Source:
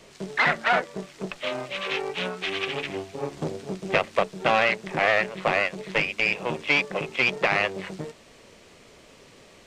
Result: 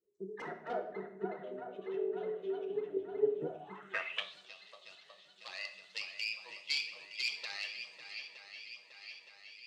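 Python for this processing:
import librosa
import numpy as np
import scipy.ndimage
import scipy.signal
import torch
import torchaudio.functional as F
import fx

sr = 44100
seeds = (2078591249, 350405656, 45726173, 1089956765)

p1 = fx.bin_expand(x, sr, power=2.0)
p2 = fx.level_steps(p1, sr, step_db=11)
p3 = p1 + (p2 * 10.0 ** (1.5 / 20.0))
p4 = fx.gate_flip(p3, sr, shuts_db=-26.0, range_db=-25, at=(4.31, 5.36))
p5 = p4 + fx.echo_swing(p4, sr, ms=917, ratio=1.5, feedback_pct=60, wet_db=-10, dry=0)
p6 = 10.0 ** (-15.0 / 20.0) * (np.abs((p5 / 10.0 ** (-15.0 / 20.0) + 3.0) % 4.0 - 2.0) - 1.0)
p7 = fx.room_shoebox(p6, sr, seeds[0], volume_m3=290.0, walls='mixed', distance_m=0.59)
p8 = fx.filter_sweep_bandpass(p7, sr, from_hz=410.0, to_hz=4500.0, start_s=3.39, end_s=4.35, q=5.6)
y = p8 * 10.0 ** (2.0 / 20.0)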